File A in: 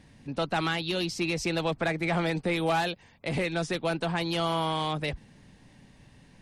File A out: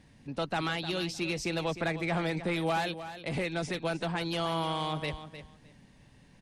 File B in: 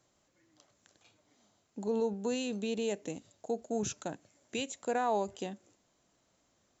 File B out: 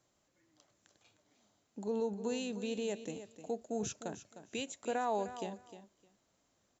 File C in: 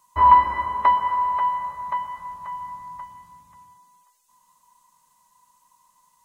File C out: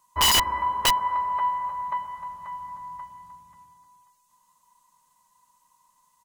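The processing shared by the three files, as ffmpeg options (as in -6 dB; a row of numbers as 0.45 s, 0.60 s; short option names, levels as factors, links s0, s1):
-af "aecho=1:1:306|612:0.251|0.0427,aeval=exprs='(mod(3.55*val(0)+1,2)-1)/3.55':c=same,volume=0.668"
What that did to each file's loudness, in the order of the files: -3.0 LU, -3.0 LU, -3.5 LU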